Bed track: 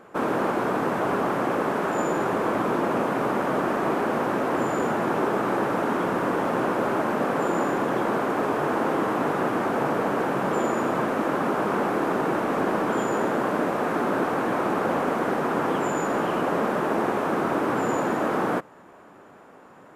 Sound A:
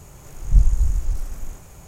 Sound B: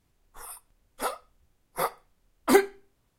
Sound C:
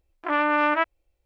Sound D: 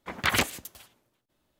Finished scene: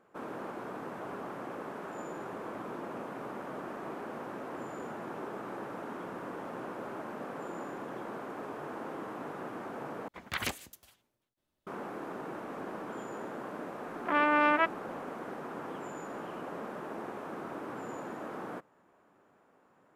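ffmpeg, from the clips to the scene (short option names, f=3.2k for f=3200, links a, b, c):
-filter_complex "[0:a]volume=-16.5dB,asplit=2[a][b];[a]atrim=end=10.084[c];[4:a]atrim=end=1.59,asetpts=PTS-STARTPTS,volume=-10dB[d];[b]atrim=start=11.666[e];[3:a]atrim=end=1.25,asetpts=PTS-STARTPTS,volume=-4dB,afade=t=in:d=0.004:c=hsin,afade=t=out:st=1.246:d=0.004:c=hsin,adelay=13820[f];[c][d]acrossfade=d=0.004:c1=hsin:c2=hsin[g];[g][e]acrossfade=d=0.004:c1=hsin:c2=hsin[h];[h][f]amix=inputs=2:normalize=0"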